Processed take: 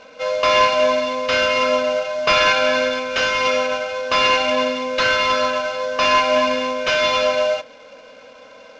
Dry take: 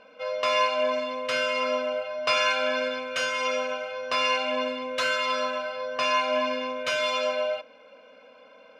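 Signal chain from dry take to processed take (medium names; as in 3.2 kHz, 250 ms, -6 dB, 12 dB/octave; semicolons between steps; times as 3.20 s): CVSD coder 32 kbps; trim +9 dB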